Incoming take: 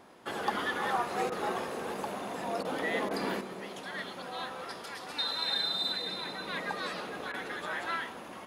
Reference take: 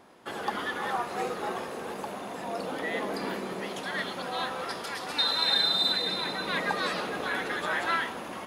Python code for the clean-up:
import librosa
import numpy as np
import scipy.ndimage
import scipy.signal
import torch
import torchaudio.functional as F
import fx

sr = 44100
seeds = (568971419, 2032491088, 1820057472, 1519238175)

y = fx.fix_interpolate(x, sr, at_s=(1.3, 2.63, 3.09, 7.32), length_ms=17.0)
y = fx.gain(y, sr, db=fx.steps((0.0, 0.0), (3.41, 6.5)))